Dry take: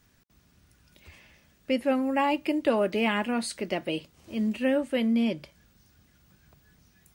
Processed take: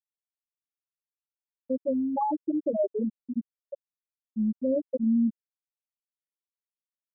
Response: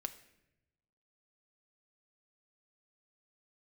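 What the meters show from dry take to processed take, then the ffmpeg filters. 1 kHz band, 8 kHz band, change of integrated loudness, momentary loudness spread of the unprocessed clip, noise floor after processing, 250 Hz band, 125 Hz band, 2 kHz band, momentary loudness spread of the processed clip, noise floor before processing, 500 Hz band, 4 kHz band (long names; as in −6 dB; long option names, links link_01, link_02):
−3.0 dB, below −35 dB, −1.5 dB, 7 LU, below −85 dBFS, −0.5 dB, can't be measured, below −40 dB, 16 LU, −64 dBFS, −3.0 dB, below −40 dB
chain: -af "afftfilt=real='re*gte(hypot(re,im),0.447)':imag='im*gte(hypot(re,im),0.447)':win_size=1024:overlap=0.75,alimiter=limit=-21.5dB:level=0:latency=1:release=53,volume=2.5dB"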